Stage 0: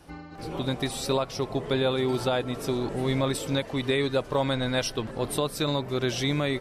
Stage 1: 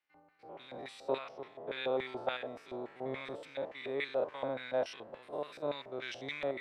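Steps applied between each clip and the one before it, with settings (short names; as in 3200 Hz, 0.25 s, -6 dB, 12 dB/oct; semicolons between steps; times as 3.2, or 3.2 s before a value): stepped spectrum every 0.1 s; LFO band-pass square 3.5 Hz 650–2100 Hz; three-band expander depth 70%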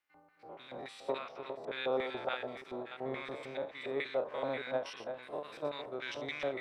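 reverse delay 0.33 s, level -8 dB; bell 1300 Hz +3 dB 0.81 oct; ending taper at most 180 dB/s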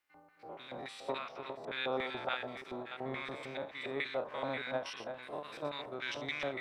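dynamic EQ 470 Hz, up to -7 dB, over -48 dBFS, Q 1.3; gain +2.5 dB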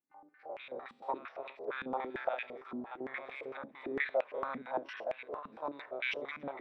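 stepped band-pass 8.8 Hz 230–2400 Hz; gain +9 dB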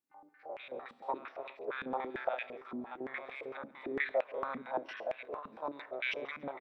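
echo 0.138 s -23 dB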